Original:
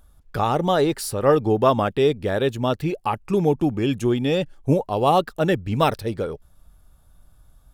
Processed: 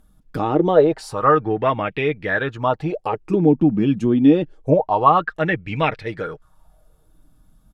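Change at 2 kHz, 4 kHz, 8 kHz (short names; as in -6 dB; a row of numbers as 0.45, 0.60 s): +6.5 dB, -5.0 dB, n/a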